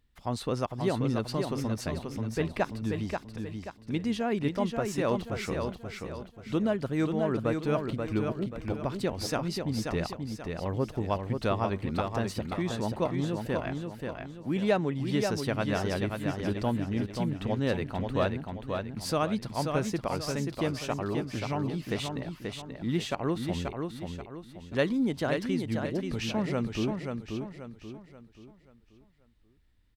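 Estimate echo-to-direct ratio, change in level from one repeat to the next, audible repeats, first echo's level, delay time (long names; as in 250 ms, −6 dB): −4.5 dB, −8.0 dB, 4, −5.0 dB, 533 ms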